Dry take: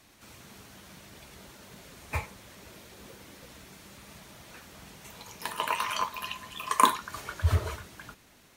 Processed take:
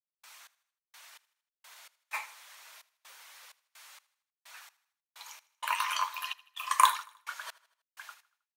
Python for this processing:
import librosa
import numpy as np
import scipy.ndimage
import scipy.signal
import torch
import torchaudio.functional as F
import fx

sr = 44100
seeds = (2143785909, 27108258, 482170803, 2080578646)

y = scipy.signal.sosfilt(scipy.signal.butter(4, 880.0, 'highpass', fs=sr, output='sos'), x)
y = fx.step_gate(y, sr, bpm=64, pattern='.x..x..x.xxx.xx', floor_db=-60.0, edge_ms=4.5)
y = fx.echo_feedback(y, sr, ms=79, feedback_pct=49, wet_db=-21)